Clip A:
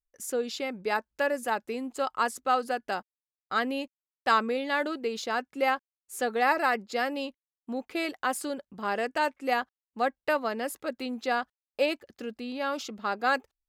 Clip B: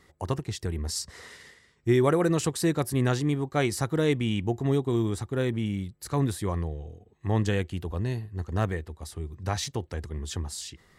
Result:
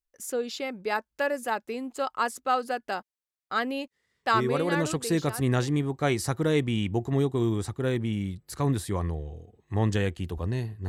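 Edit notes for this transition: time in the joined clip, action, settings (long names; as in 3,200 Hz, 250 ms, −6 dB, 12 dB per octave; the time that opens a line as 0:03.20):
clip A
0:04.80: continue with clip B from 0:02.33, crossfade 1.80 s equal-power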